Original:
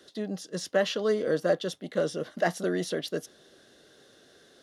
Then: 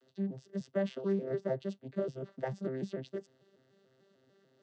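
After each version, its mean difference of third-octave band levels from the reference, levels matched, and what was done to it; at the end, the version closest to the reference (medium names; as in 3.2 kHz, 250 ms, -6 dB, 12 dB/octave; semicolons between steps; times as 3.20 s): 8.0 dB: vocoder on a broken chord bare fifth, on C3, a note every 148 ms; trim -6 dB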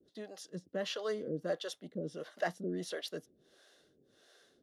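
5.0 dB: harmonic tremolo 1.5 Hz, depth 100%, crossover 420 Hz; trim -4.5 dB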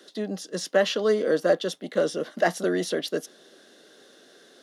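1.0 dB: high-pass 190 Hz 24 dB/octave; trim +4 dB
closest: third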